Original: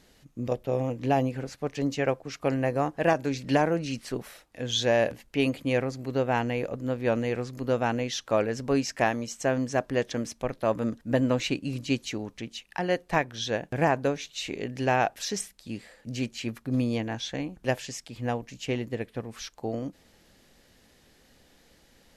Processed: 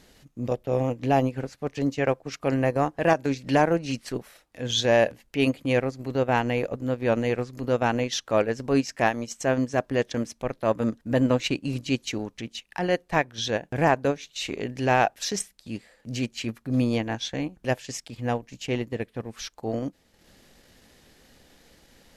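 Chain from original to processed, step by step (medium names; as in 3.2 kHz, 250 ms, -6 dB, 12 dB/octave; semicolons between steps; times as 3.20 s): transient shaper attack -5 dB, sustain -9 dB; trim +4.5 dB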